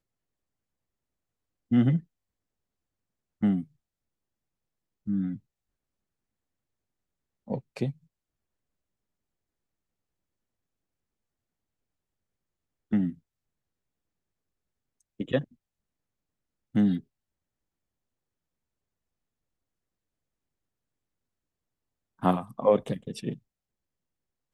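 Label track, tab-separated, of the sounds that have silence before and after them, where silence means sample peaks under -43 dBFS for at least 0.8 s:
1.710000	2.000000	sound
3.410000	3.640000	sound
5.070000	5.370000	sound
7.480000	7.920000	sound
12.920000	13.140000	sound
15.200000	15.440000	sound
16.750000	17.000000	sound
22.220000	23.360000	sound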